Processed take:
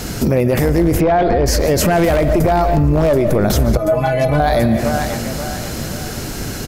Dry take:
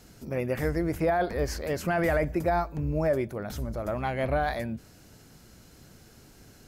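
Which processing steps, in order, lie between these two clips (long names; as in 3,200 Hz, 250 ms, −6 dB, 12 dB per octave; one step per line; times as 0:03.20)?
wavefolder on the positive side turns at −21.5 dBFS
repeating echo 534 ms, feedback 42%, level −21.5 dB
convolution reverb RT60 0.55 s, pre-delay 105 ms, DRR 12.5 dB
dynamic equaliser 1,700 Hz, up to −7 dB, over −44 dBFS, Q 0.79
0:01.01–0:01.46: low-pass filter 3,200 Hz 12 dB per octave
0:03.77–0:04.40: stiff-string resonator 150 Hz, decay 0.23 s, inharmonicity 0.008
downward compressor 2.5 to 1, threshold −35 dBFS, peak gain reduction 8.5 dB
boost into a limiter +33.5 dB
level −5.5 dB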